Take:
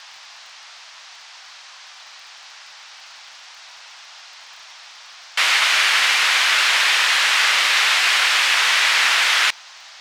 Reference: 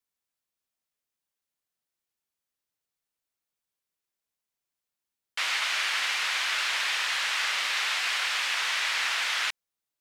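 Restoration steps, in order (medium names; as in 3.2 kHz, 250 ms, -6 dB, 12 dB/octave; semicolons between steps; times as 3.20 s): de-click; noise print and reduce 30 dB; trim 0 dB, from 4.90 s -11.5 dB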